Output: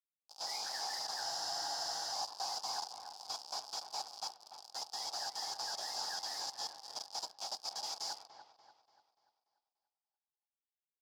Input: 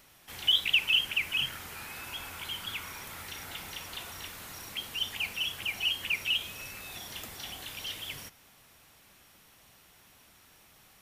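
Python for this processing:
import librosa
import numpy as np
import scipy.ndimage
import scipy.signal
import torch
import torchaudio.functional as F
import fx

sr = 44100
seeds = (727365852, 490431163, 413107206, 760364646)

p1 = fx.partial_stretch(x, sr, pct=83)
p2 = fx.level_steps(p1, sr, step_db=22)
p3 = p1 + F.gain(torch.from_numpy(p2), 2.0).numpy()
p4 = fx.quant_dither(p3, sr, seeds[0], bits=6, dither='none')
p5 = fx.mod_noise(p4, sr, seeds[1], snr_db=17)
p6 = fx.double_bandpass(p5, sr, hz=2000.0, octaves=2.6)
p7 = p6 + fx.echo_wet_lowpass(p6, sr, ms=291, feedback_pct=44, hz=2500.0, wet_db=-9.5, dry=0)
p8 = fx.spec_freeze(p7, sr, seeds[2], at_s=1.25, hold_s=0.87)
y = F.gain(torch.from_numpy(p8), 9.0).numpy()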